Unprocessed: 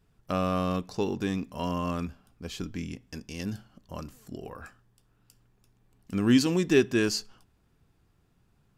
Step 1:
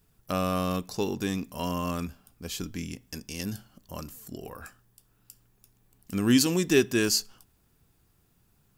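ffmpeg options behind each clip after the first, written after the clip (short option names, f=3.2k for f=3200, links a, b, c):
-af "aemphasis=mode=production:type=50fm"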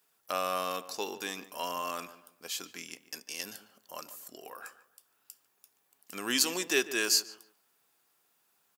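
-filter_complex "[0:a]highpass=620,asplit=2[a][b];[b]adelay=146,lowpass=f=1.8k:p=1,volume=-13.5dB,asplit=2[c][d];[d]adelay=146,lowpass=f=1.8k:p=1,volume=0.32,asplit=2[e][f];[f]adelay=146,lowpass=f=1.8k:p=1,volume=0.32[g];[a][c][e][g]amix=inputs=4:normalize=0"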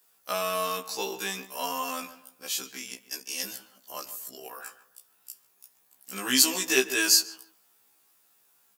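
-af "highshelf=f=5.6k:g=6,afftfilt=real='re*1.73*eq(mod(b,3),0)':imag='im*1.73*eq(mod(b,3),0)':win_size=2048:overlap=0.75,volume=5.5dB"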